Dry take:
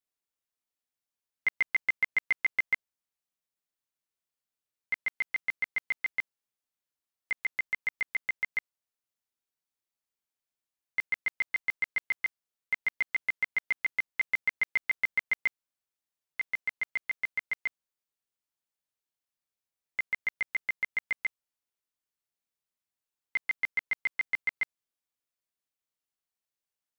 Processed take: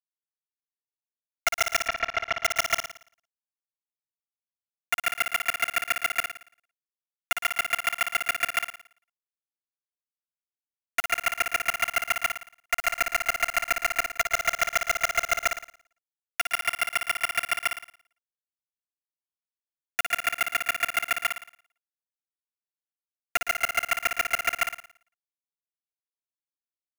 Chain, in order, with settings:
sub-harmonics by changed cycles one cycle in 3, inverted
low-pass that shuts in the quiet parts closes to 1,200 Hz, open at −27.5 dBFS
noise gate −24 dBFS, range −9 dB
drawn EQ curve 130 Hz 0 dB, 2,400 Hz +10 dB, 3,300 Hz 0 dB
wave folding −21.5 dBFS
bit reduction 5 bits
0:01.78–0:02.36: high-frequency loss of the air 230 metres
on a send: flutter between parallel walls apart 9.7 metres, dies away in 0.52 s
on the sum: level +6 dB

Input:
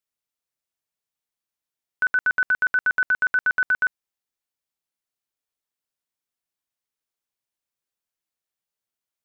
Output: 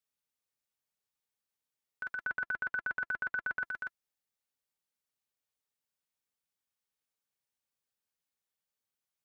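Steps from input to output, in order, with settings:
0:02.24–0:03.64: low-pass filter 2,000 Hz 6 dB per octave
compressor whose output falls as the input rises −25 dBFS, ratio −0.5
notch comb filter 340 Hz
level −7 dB

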